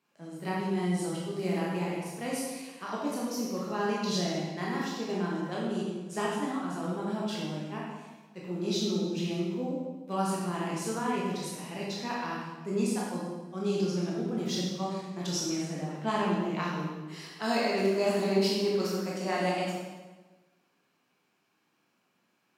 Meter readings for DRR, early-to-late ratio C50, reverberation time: -5.0 dB, -1.0 dB, 1.2 s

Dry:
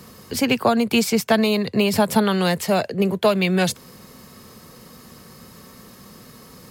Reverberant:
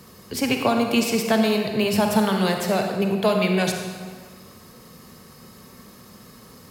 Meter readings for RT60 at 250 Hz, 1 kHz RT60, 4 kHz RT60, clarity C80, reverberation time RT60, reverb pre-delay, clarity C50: 1.6 s, 1.7 s, 1.3 s, 5.5 dB, 1.7 s, 36 ms, 4.0 dB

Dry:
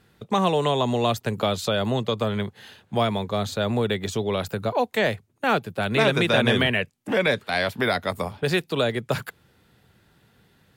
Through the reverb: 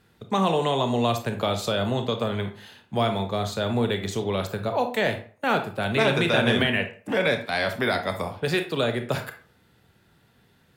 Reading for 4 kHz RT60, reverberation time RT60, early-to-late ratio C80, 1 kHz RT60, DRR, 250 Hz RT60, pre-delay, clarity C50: 0.30 s, 0.45 s, 15.0 dB, 0.45 s, 6.0 dB, 0.35 s, 26 ms, 9.5 dB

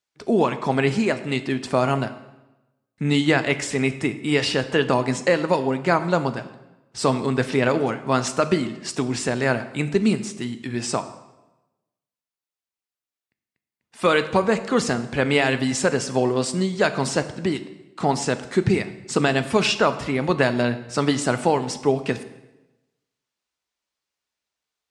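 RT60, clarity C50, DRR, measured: 1.0 s, 13.5 dB, 10.0 dB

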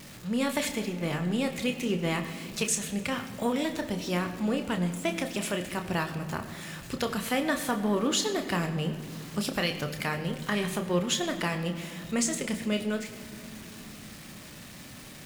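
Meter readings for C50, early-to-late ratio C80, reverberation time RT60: 10.0 dB, 10.5 dB, 2.8 s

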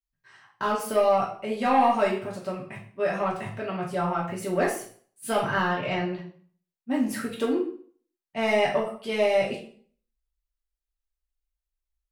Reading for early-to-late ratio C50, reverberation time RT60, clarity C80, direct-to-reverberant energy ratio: 6.5 dB, 0.50 s, 11.0 dB, -4.5 dB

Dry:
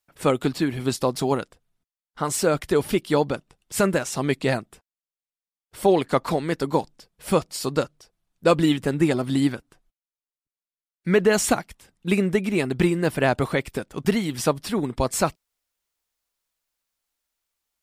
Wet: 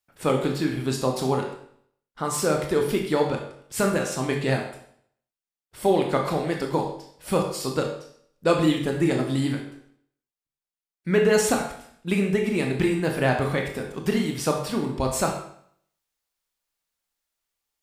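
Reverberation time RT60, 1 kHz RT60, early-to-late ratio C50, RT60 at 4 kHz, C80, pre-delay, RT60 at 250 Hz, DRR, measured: 0.60 s, 0.60 s, 6.0 dB, 0.60 s, 8.5 dB, 21 ms, 0.65 s, 1.5 dB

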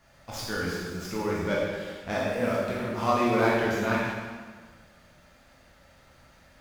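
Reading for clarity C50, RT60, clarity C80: -1.5 dB, 1.5 s, 1.0 dB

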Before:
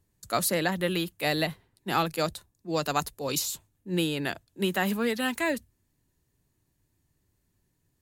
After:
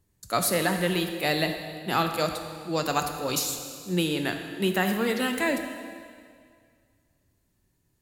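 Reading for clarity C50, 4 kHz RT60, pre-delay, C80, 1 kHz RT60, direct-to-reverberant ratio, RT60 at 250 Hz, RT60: 6.5 dB, 2.0 s, 5 ms, 7.5 dB, 2.1 s, 5.0 dB, 2.1 s, 2.1 s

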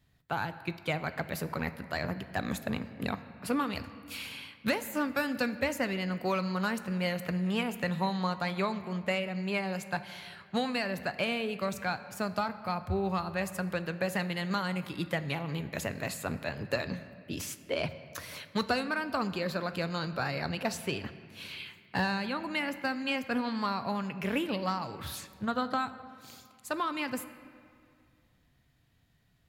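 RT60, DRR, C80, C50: 2.2 s, 11.0 dB, 14.0 dB, 13.0 dB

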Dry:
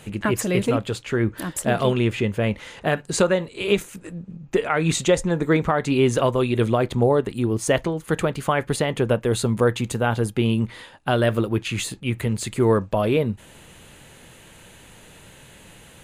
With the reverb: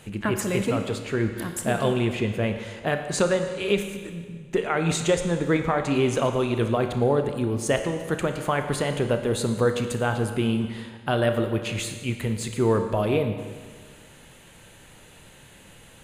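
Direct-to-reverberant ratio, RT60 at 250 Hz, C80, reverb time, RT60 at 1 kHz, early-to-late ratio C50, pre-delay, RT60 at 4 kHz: 6.5 dB, 1.6 s, 8.5 dB, 1.6 s, 1.6 s, 7.5 dB, 29 ms, 1.5 s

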